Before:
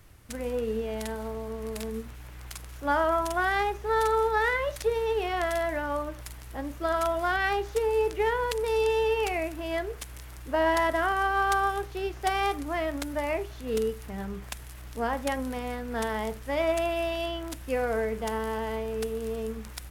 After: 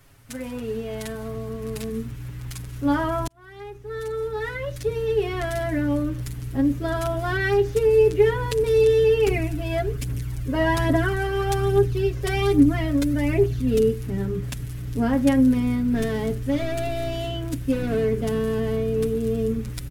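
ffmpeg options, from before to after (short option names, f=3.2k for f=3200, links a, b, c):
-filter_complex "[0:a]asettb=1/sr,asplit=3[a][b][c];[a]atrim=end=9.274[d];[b]atrim=start=9.27:end=13.8,asetpts=PTS-STARTPTS,afade=t=in:d=0.004:c=qsin,afade=t=out:st=4.526:d=0.004:c=qsin,aphaser=in_gain=1:out_gain=1:delay=2:decay=0.46:speed=1.2:type=triangular[e];[c]atrim=start=13.796[f];[d][e]acrossfade=d=0.004:c1=hsin:c2=qsin[g];[g][f]acrossfade=d=0.004:c1=qsin:c2=hsin,asettb=1/sr,asplit=3[h][i][j];[h]atrim=end=15.774[k];[i]atrim=start=15.77:end=19.26,asetpts=PTS-STARTPTS,afade=t=in:d=0.004:c=qsin,afade=t=out:st=3.486:d=0.004:c=qsin,asoftclip=type=hard:threshold=-27dB[l];[j]atrim=start=19.256[m];[k][l]acrossfade=d=0.004:c1=hsin:c2=qsin[n];[n][m]acrossfade=d=0.004:c1=qsin:c2=hsin,asplit=2[o][p];[o]atrim=end=3.27,asetpts=PTS-STARTPTS,afade=t=out:st=3.266:d=0.004:c=hsin[q];[p]atrim=start=3.27,asetpts=PTS-STARTPTS,afade=t=in:d=2.41[r];[q][r]concat=n=2:v=0:a=1,lowshelf=f=84:g=-8,aecho=1:1:7.3:0.91,asubboost=boost=12:cutoff=230"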